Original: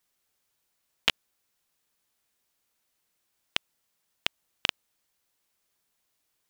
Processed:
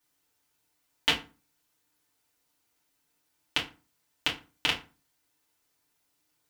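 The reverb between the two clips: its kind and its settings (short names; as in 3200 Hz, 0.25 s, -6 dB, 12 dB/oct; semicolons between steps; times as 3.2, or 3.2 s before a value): FDN reverb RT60 0.33 s, low-frequency decay 1.3×, high-frequency decay 0.7×, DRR -5 dB; gain -3.5 dB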